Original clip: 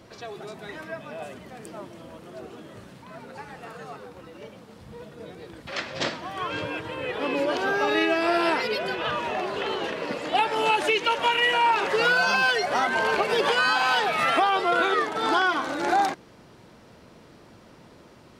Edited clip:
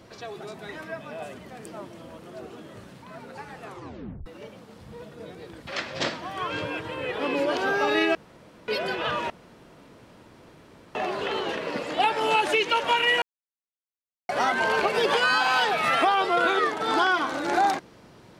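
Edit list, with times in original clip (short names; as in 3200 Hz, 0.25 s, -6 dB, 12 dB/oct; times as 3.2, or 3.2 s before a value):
3.62 tape stop 0.64 s
8.15–8.68 room tone
9.3 insert room tone 1.65 s
11.57–12.64 mute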